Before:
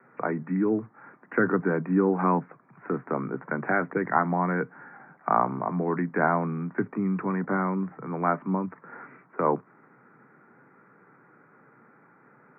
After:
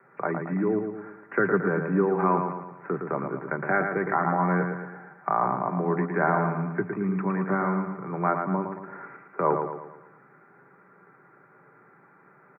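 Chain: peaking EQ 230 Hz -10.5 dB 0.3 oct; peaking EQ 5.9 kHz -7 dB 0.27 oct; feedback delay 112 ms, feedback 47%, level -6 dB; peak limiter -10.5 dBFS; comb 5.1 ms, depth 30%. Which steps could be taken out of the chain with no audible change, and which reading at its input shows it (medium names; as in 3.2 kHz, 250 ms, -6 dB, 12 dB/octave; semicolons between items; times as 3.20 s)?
peaking EQ 5.9 kHz: input has nothing above 2.3 kHz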